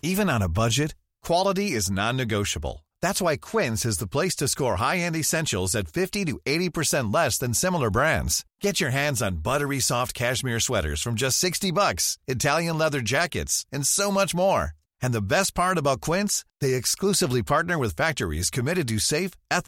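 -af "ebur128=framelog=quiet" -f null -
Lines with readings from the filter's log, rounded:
Integrated loudness:
  I:         -24.0 LUFS
  Threshold: -34.1 LUFS
Loudness range:
  LRA:         1.8 LU
  Threshold: -44.0 LUFS
  LRA low:   -25.1 LUFS
  LRA high:  -23.3 LUFS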